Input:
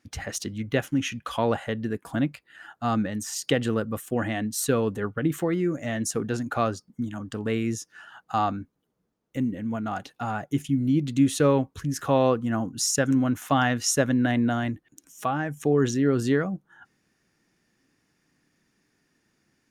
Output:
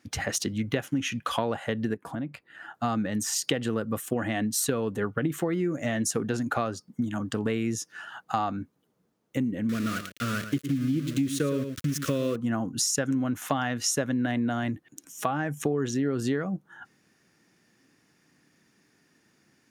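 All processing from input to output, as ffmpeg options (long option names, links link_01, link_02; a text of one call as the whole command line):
ffmpeg -i in.wav -filter_complex "[0:a]asettb=1/sr,asplit=3[link_01][link_02][link_03];[link_01]atrim=end=1.944[link_04];[link_02]atrim=start=1.94:end=2.74,asetpts=PTS-STARTPTS,afade=type=in:duration=0.004:curve=qsin,afade=type=out:start_time=0.796:duration=0.004:curve=qsin,highshelf=frequency=2300:gain=-10.5,acompressor=threshold=-36dB:ratio=4:attack=3.2:release=140:knee=1:detection=peak[link_05];[link_03]atrim=start=2.736[link_06];[link_04][link_05]acrossfade=duration=0.004:curve1=hsin:curve2=qsin[link_07];[link_07][link_06]acrossfade=duration=0.004:curve1=qsin:curve2=hsin,asettb=1/sr,asplit=3[link_08][link_09][link_10];[link_08]atrim=end=9.694[link_11];[link_09]atrim=start=9.69:end=12.36,asetpts=PTS-STARTPTS,afade=type=in:duration=0.004:curve=qsin,afade=type=out:start_time=2.666:duration=0.004:curve=qsin,aeval=exprs='val(0)*gte(abs(val(0)),0.02)':channel_layout=same,asuperstop=centerf=820:order=4:qfactor=1.1,aecho=1:1:111:0.282,atrim=end_sample=117747[link_12];[link_10]atrim=start=12.356[link_13];[link_11][link_12]acrossfade=duration=0.004:curve1=hsin:curve2=qsin[link_14];[link_14][link_13]acrossfade=duration=0.004:curve1=qsin:curve2=hsin,highpass=96,acompressor=threshold=-29dB:ratio=6,volume=5dB" out.wav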